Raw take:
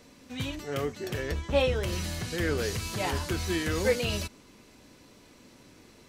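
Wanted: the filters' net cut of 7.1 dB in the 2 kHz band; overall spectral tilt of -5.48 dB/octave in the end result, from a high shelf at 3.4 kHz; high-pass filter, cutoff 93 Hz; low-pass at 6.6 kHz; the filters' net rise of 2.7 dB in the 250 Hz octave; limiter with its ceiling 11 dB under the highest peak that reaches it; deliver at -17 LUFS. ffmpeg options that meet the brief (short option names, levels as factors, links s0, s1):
-af "highpass=93,lowpass=6600,equalizer=f=250:t=o:g=4,equalizer=f=2000:t=o:g=-8,highshelf=f=3400:g=-4,volume=7.94,alimiter=limit=0.447:level=0:latency=1"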